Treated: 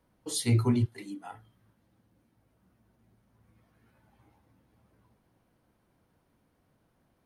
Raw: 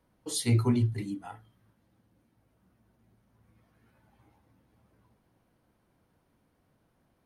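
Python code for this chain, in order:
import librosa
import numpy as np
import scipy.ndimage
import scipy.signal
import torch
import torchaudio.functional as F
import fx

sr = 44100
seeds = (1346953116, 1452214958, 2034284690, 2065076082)

y = fx.highpass(x, sr, hz=fx.line((0.84, 640.0), (1.34, 180.0)), slope=12, at=(0.84, 1.34), fade=0.02)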